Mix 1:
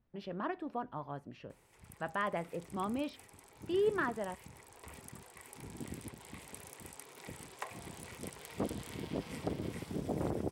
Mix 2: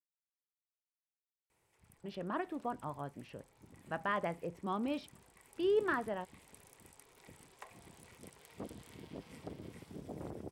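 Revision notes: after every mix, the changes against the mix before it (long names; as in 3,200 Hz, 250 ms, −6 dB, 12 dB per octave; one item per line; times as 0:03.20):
speech: entry +1.90 s
background −9.5 dB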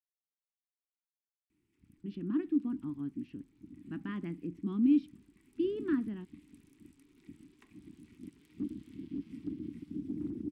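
master: add drawn EQ curve 140 Hz 0 dB, 300 Hz +15 dB, 560 Hz −29 dB, 1,200 Hz −13 dB, 1,800 Hz −10 dB, 2,600 Hz −6 dB, 8,300 Hz −13 dB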